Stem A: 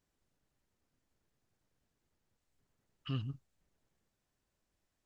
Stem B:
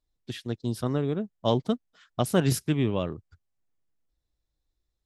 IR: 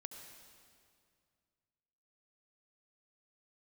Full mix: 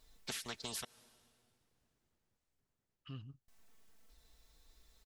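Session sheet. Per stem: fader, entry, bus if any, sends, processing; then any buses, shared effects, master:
+1.0 dB, 0.00 s, no send, auto duck -15 dB, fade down 1.60 s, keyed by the second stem
-4.5 dB, 0.00 s, muted 0.85–3.48, send -14.5 dB, low shelf 480 Hz -7.5 dB; comb 4.5 ms; spectral compressor 4:1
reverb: on, RT60 2.2 s, pre-delay 64 ms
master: compressor 12:1, threshold -39 dBFS, peak gain reduction 9.5 dB

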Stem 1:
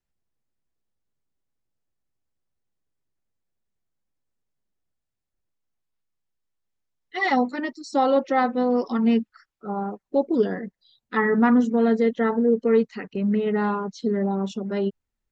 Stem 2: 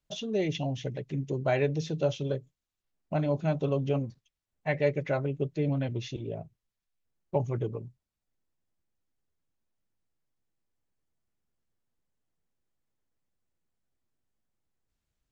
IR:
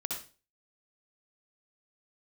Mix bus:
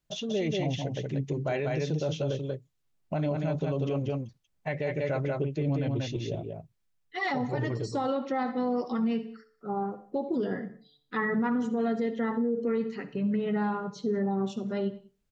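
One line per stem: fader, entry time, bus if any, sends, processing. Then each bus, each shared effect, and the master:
-2.5 dB, 0.00 s, send -12 dB, echo send -23.5 dB, bell 130 Hz +9 dB 0.79 oct; de-hum 146.5 Hz, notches 6; flange 0.44 Hz, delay 6 ms, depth 2.5 ms, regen +54%
+1.5 dB, 0.00 s, no send, echo send -4 dB, auto duck -6 dB, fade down 0.30 s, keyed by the first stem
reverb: on, RT60 0.35 s, pre-delay 57 ms
echo: echo 0.187 s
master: limiter -21 dBFS, peak gain reduction 10 dB

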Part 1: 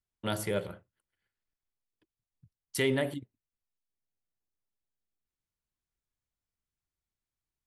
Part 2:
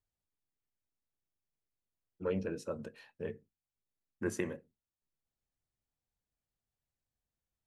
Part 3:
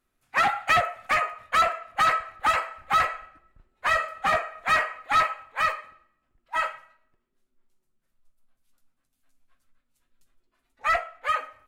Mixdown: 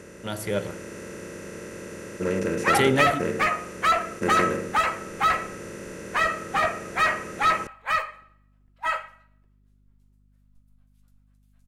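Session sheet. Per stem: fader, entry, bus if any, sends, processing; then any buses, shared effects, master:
-1.0 dB, 0.00 s, no send, dry
-4.0 dB, 0.00 s, no send, per-bin compression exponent 0.2
-7.5 dB, 2.30 s, no send, dry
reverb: off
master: AGC gain up to 7.5 dB; hum 50 Hz, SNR 33 dB

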